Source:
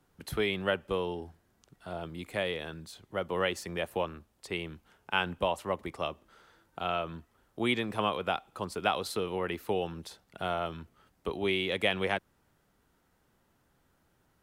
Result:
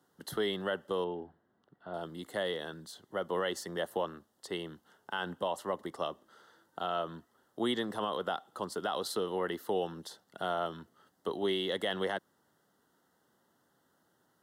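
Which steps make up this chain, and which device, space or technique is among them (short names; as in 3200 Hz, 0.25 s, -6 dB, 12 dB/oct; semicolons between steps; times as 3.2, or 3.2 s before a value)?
PA system with an anti-feedback notch (HPF 190 Hz 12 dB/oct; Butterworth band-stop 2400 Hz, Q 2.7; limiter -22 dBFS, peak gain reduction 8.5 dB); 1.04–1.94 air absorption 420 m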